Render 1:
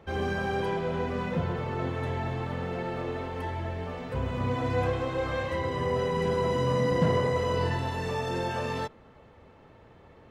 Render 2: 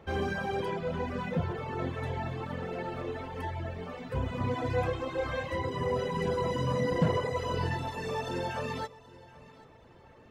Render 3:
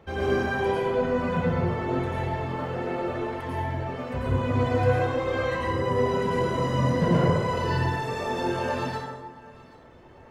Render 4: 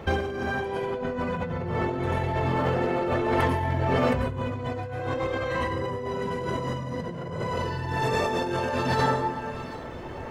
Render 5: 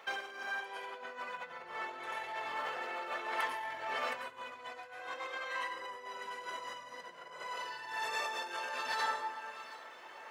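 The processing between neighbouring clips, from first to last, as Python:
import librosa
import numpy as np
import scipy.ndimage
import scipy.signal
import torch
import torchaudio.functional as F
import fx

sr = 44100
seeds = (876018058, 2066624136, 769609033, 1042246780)

y1 = fx.dereverb_blind(x, sr, rt60_s=1.3)
y1 = fx.echo_feedback(y1, sr, ms=779, feedback_pct=38, wet_db=-20)
y2 = fx.dereverb_blind(y1, sr, rt60_s=1.6)
y2 = fx.rev_plate(y2, sr, seeds[0], rt60_s=1.5, hf_ratio=0.55, predelay_ms=80, drr_db=-8.0)
y3 = fx.over_compress(y2, sr, threshold_db=-34.0, ratio=-1.0)
y3 = y3 * 10.0 ** (6.0 / 20.0)
y4 = scipy.signal.sosfilt(scipy.signal.butter(2, 1100.0, 'highpass', fs=sr, output='sos'), y3)
y4 = y4 * 10.0 ** (-5.0 / 20.0)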